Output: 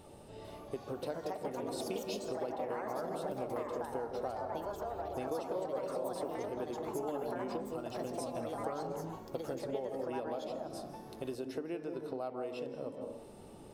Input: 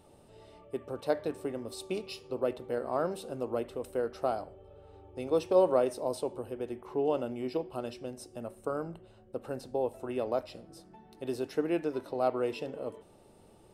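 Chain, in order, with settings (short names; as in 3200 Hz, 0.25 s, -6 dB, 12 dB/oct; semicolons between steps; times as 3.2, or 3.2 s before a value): on a send at -9 dB: reverb RT60 0.50 s, pre-delay 0.152 s; on the sum: compressor 6:1, threshold -42 dBFS, peak gain reduction 22 dB; echoes that change speed 0.446 s, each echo +4 st, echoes 2; gain +4.5 dB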